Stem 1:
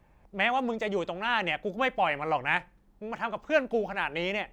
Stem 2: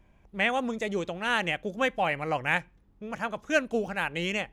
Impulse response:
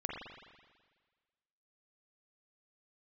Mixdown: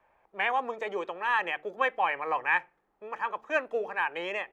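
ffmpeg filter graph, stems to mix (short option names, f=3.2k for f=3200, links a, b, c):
-filter_complex "[0:a]volume=1dB[a];[1:a]equalizer=f=220:t=o:w=0.77:g=-7,volume=-1,adelay=1.3,volume=-2dB[b];[a][b]amix=inputs=2:normalize=0,acrossover=split=450 2300:gain=0.0708 1 0.178[c][d][e];[c][d][e]amix=inputs=3:normalize=0,bandreject=f=75.26:t=h:w=4,bandreject=f=150.52:t=h:w=4,bandreject=f=225.78:t=h:w=4,bandreject=f=301.04:t=h:w=4,bandreject=f=376.3:t=h:w=4,bandreject=f=451.56:t=h:w=4"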